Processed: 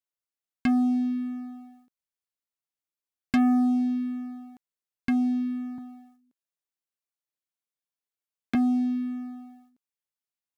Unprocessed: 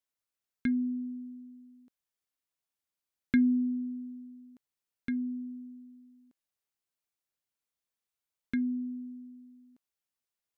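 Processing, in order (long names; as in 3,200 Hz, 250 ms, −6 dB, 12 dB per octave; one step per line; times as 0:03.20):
0:05.78–0:08.55: high-pass filter 120 Hz 24 dB per octave
leveller curve on the samples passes 3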